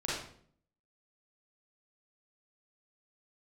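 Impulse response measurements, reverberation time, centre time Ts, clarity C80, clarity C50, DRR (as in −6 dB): 0.60 s, 62 ms, 4.5 dB, −1.0 dB, −7.5 dB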